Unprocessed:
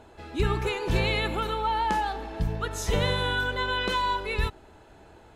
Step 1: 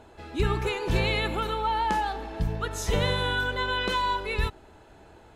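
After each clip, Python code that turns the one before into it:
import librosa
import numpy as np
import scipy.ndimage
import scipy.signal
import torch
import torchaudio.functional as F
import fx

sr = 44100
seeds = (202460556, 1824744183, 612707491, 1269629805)

y = x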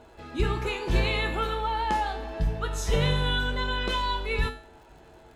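y = fx.comb_fb(x, sr, f0_hz=50.0, decay_s=0.42, harmonics='odd', damping=0.0, mix_pct=80)
y = fx.dmg_crackle(y, sr, seeds[0], per_s=110.0, level_db=-57.0)
y = fx.high_shelf(y, sr, hz=11000.0, db=-5.5)
y = y * librosa.db_to_amplitude(8.5)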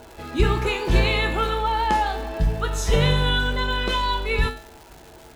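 y = fx.rider(x, sr, range_db=4, speed_s=2.0)
y = fx.dmg_crackle(y, sr, seeds[1], per_s=380.0, level_db=-41.0)
y = y * librosa.db_to_amplitude(5.0)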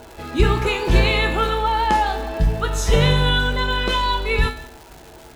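y = x + 10.0 ** (-19.0 / 20.0) * np.pad(x, (int(176 * sr / 1000.0), 0))[:len(x)]
y = y * librosa.db_to_amplitude(3.0)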